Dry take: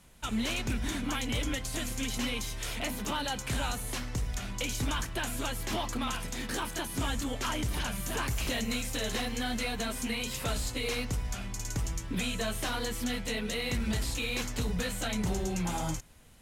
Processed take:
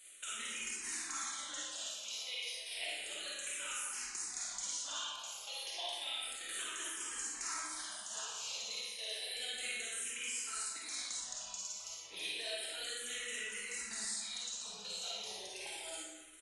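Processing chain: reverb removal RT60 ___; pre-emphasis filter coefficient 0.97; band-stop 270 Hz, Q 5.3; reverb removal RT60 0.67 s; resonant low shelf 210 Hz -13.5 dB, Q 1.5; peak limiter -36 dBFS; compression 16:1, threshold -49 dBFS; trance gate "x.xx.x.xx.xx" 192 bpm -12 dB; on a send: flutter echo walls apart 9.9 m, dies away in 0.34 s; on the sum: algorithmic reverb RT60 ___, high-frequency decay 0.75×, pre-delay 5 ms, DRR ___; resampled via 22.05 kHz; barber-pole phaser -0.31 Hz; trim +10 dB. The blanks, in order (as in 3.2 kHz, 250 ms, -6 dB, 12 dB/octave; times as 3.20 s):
0.5 s, 1.6 s, -7 dB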